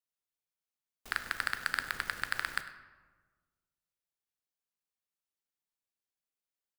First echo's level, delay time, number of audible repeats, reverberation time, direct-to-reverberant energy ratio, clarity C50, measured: −18.0 dB, 100 ms, 1, 1.4 s, 8.0 dB, 10.0 dB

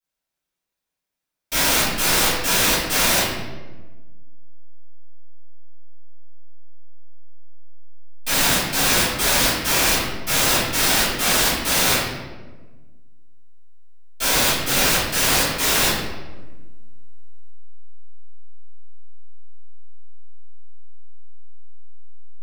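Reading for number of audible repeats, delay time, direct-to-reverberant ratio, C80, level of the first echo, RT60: no echo audible, no echo audible, −16.0 dB, 2.5 dB, no echo audible, 1.3 s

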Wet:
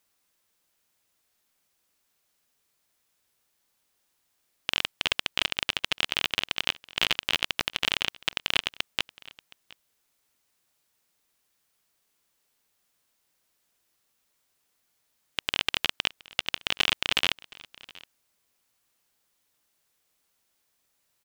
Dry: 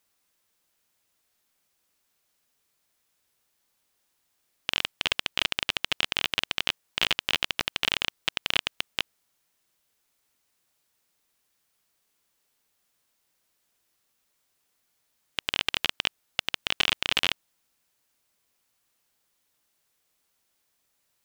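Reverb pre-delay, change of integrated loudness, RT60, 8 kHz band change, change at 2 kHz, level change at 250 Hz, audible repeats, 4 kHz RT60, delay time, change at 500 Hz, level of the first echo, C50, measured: no reverb audible, 0.0 dB, no reverb audible, 0.0 dB, 0.0 dB, 0.0 dB, 1, no reverb audible, 719 ms, 0.0 dB, −22.5 dB, no reverb audible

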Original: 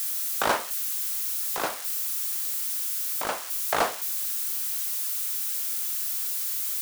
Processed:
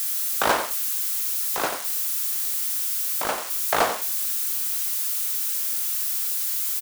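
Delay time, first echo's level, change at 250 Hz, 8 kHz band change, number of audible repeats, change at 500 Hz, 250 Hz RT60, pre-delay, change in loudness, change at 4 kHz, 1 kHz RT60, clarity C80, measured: 89 ms, −9.5 dB, +3.5 dB, +3.5 dB, 1, +3.5 dB, no reverb audible, no reverb audible, +3.5 dB, +3.5 dB, no reverb audible, no reverb audible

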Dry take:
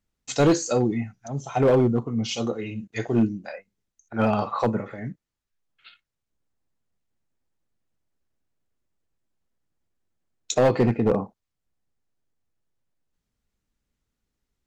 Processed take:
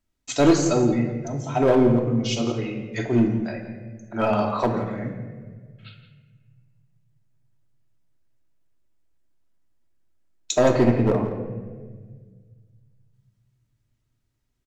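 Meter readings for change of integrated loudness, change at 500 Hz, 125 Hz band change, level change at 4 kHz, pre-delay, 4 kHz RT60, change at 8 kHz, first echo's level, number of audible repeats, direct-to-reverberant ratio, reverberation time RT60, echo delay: +1.5 dB, +1.5 dB, +2.0 dB, +2.5 dB, 3 ms, 0.90 s, +1.5 dB, −13.0 dB, 1, 1.5 dB, 1.5 s, 169 ms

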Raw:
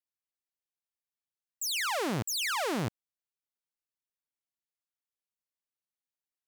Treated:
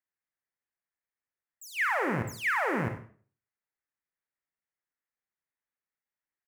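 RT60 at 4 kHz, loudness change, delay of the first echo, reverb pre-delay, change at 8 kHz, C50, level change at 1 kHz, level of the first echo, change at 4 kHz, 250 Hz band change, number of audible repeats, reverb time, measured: 0.40 s, +1.5 dB, 94 ms, 36 ms, −13.0 dB, 7.5 dB, +3.5 dB, −15.0 dB, −13.0 dB, +1.0 dB, 1, 0.45 s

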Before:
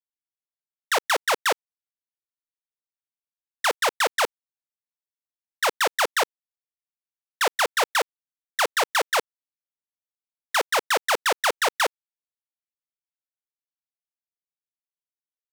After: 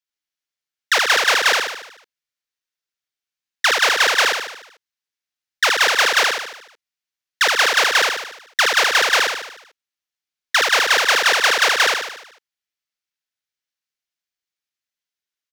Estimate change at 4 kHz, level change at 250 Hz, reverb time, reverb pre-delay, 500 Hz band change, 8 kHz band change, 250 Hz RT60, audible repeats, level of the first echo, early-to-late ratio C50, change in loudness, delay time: +10.5 dB, +2.5 dB, no reverb audible, no reverb audible, +2.5 dB, +7.5 dB, no reverb audible, 6, −3.0 dB, no reverb audible, +8.0 dB, 74 ms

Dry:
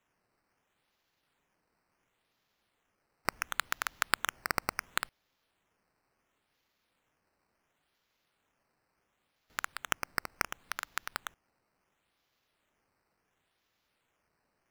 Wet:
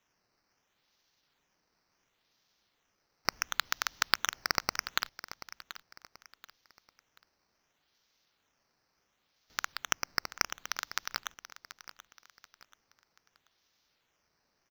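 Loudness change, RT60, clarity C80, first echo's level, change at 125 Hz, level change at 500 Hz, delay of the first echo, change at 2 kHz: +2.0 dB, no reverb audible, no reverb audible, −14.5 dB, −1.0 dB, −1.0 dB, 733 ms, +0.5 dB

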